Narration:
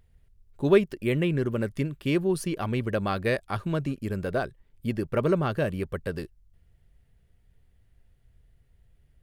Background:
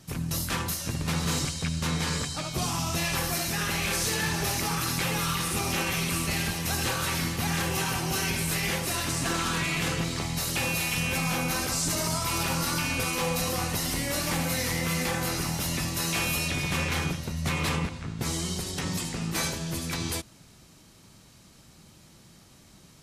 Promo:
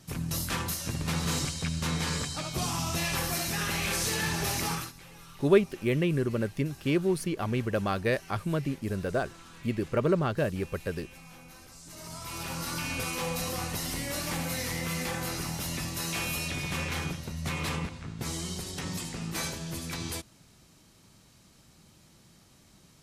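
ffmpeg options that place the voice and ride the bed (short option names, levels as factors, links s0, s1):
-filter_complex "[0:a]adelay=4800,volume=0.841[s0];[1:a]volume=6.31,afade=t=out:st=4.71:d=0.21:silence=0.0944061,afade=t=in:st=11.84:d=1.1:silence=0.125893[s1];[s0][s1]amix=inputs=2:normalize=0"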